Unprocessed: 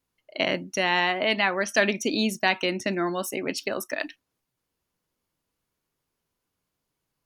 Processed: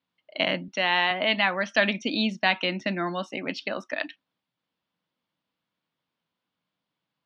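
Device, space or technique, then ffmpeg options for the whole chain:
kitchen radio: -filter_complex "[0:a]highpass=170,equalizer=frequency=180:width_type=q:width=4:gain=4,equalizer=frequency=400:width_type=q:width=4:gain=-10,equalizer=frequency=3400:width_type=q:width=4:gain=5,lowpass=frequency=4300:width=0.5412,lowpass=frequency=4300:width=1.3066,asettb=1/sr,asplit=3[link_01][link_02][link_03];[link_01]atrim=end=0.684[link_04];[link_02]atrim=start=0.68:end=1.11,asetpts=PTS-STARTPTS,afade=type=in:duration=0.004:curve=qsin,afade=type=out:start_time=0.426:duration=0.004:curve=qsin,highpass=230[link_05];[link_03]atrim=start=1.106[link_06];[link_04][link_05]acrossfade=duration=0.004:curve1=hsin:curve2=qsin[link_07];[link_07][link_06]acrossfade=duration=0.004:curve1=qsin:curve2=hsin"

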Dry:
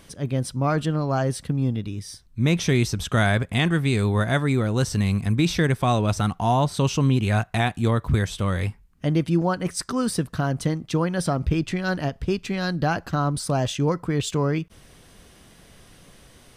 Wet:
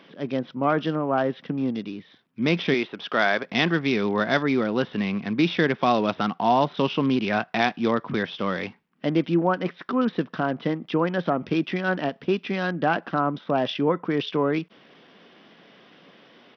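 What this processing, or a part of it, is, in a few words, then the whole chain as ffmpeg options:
Bluetooth headset: -filter_complex "[0:a]asettb=1/sr,asplit=3[link_01][link_02][link_03];[link_01]atrim=end=2.744[link_04];[link_02]atrim=start=2.74:end=3.46,asetpts=PTS-STARTPTS,afade=type=in:duration=0.004:curve=qsin,afade=type=out:start_time=0.716:duration=0.004:curve=qsin,bass=frequency=250:gain=-13,treble=frequency=4000:gain=-6[link_05];[link_03]atrim=start=3.456[link_06];[link_04][link_05]acrossfade=duration=0.004:curve1=hsin:curve2=qsin[link_07];[link_07][link_06]acrossfade=duration=0.004:curve1=qsin:curve2=hsin,highpass=frequency=200:width=0.5412,highpass=frequency=200:width=1.3066,aresample=8000,aresample=44100,volume=2dB" -ar 44100 -c:a sbc -b:a 64k

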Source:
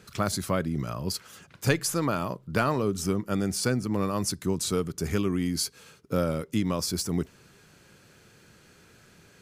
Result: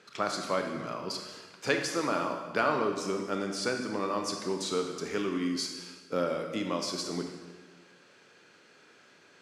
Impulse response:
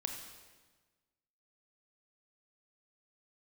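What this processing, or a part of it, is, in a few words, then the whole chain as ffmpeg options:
supermarket ceiling speaker: -filter_complex "[0:a]highpass=340,lowpass=5300[link_01];[1:a]atrim=start_sample=2205[link_02];[link_01][link_02]afir=irnorm=-1:irlink=0"

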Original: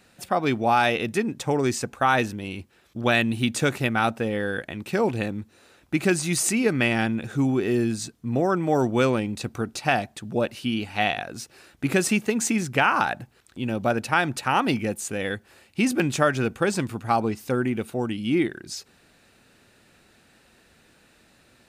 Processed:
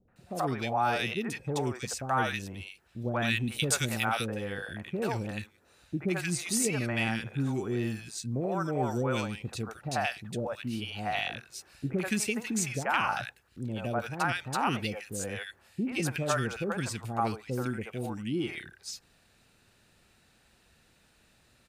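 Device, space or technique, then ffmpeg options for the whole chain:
low shelf boost with a cut just above: -filter_complex "[0:a]asettb=1/sr,asplit=3[link_01][link_02][link_03];[link_01]atrim=end=3.364[link_04];[link_02]atrim=start=3.36:end=4.09,asetpts=PTS-STARTPTS,afade=type=in:duration=0.004:curve=qsin,afade=type=out:start_time=0.726:duration=0.004:curve=qsin,highshelf=frequency=4000:gain=10[link_05];[link_03]atrim=start=4.086[link_06];[link_04][link_05]acrossfade=duration=0.004:curve1=hsin:curve2=qsin[link_07];[link_07][link_06]acrossfade=duration=0.004:curve1=qsin:curve2=hsin,lowshelf=frequency=72:gain=5.5,equalizer=frequency=280:width_type=o:width=1:gain=-5,acrossover=split=530|1700[link_08][link_09][link_10];[link_09]adelay=80[link_11];[link_10]adelay=160[link_12];[link_08][link_11][link_12]amix=inputs=3:normalize=0,volume=-5dB"

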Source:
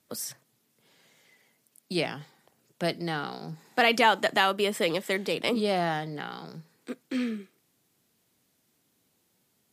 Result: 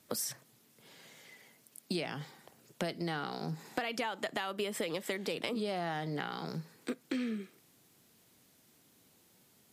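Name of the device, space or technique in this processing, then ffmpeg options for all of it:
serial compression, leveller first: -af "acompressor=threshold=-27dB:ratio=3,acompressor=threshold=-39dB:ratio=5,volume=5.5dB"

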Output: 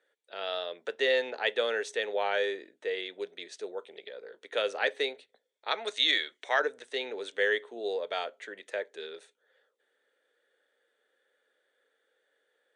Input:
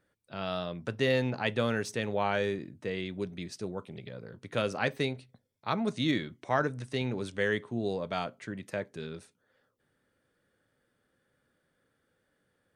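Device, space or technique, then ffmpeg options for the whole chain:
phone speaker on a table: -filter_complex "[0:a]asettb=1/sr,asplit=3[link_01][link_02][link_03];[link_01]atrim=end=5.714[link_04];[link_02]atrim=start=5.71:end=6.6,asetpts=PTS-STARTPTS,afade=type=in:duration=0.004:curve=qsin,afade=type=out:start_time=0.886:duration=0.004:curve=qsin,tiltshelf=frequency=780:gain=-7[link_05];[link_03]atrim=start=6.596[link_06];[link_04][link_05]acrossfade=duration=0.004:curve1=hsin:curve2=qsin[link_07];[link_07][link_06]acrossfade=duration=0.004:curve1=qsin:curve2=hsin,highpass=frequency=420:width=0.5412,highpass=frequency=420:width=1.3066,equalizer=frequency=450:width_type=q:width=4:gain=6,equalizer=frequency=1100:width_type=q:width=4:gain=-6,equalizer=frequency=1800:width_type=q:width=4:gain=5,equalizer=frequency=3500:width_type=q:width=4:gain=7,equalizer=frequency=5100:width_type=q:width=4:gain=-7,lowpass=frequency=8700:width=0.5412,lowpass=frequency=8700:width=1.3066"

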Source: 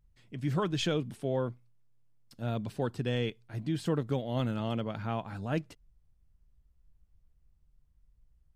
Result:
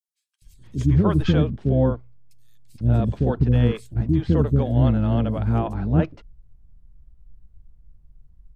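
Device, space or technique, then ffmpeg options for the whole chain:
octave pedal: -filter_complex "[0:a]tiltshelf=frequency=970:gain=7.5,acrossover=split=420|5900[link_01][link_02][link_03];[link_01]adelay=420[link_04];[link_02]adelay=470[link_05];[link_04][link_05][link_03]amix=inputs=3:normalize=0,adynamicequalizer=threshold=0.0141:dfrequency=340:dqfactor=1.5:tfrequency=340:tqfactor=1.5:attack=5:release=100:ratio=0.375:range=2:mode=cutabove:tftype=bell,asplit=2[link_06][link_07];[link_07]asetrate=22050,aresample=44100,atempo=2,volume=-5dB[link_08];[link_06][link_08]amix=inputs=2:normalize=0,volume=7dB"

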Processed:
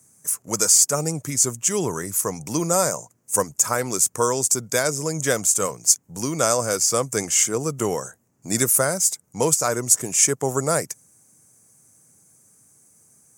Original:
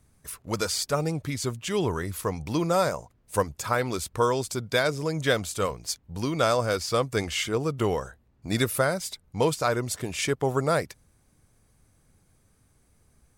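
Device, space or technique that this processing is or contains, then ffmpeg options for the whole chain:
budget condenser microphone: -af "highpass=frequency=120:width=0.5412,highpass=frequency=120:width=1.3066,highshelf=frequency=5100:width_type=q:width=3:gain=10.5,volume=2dB"

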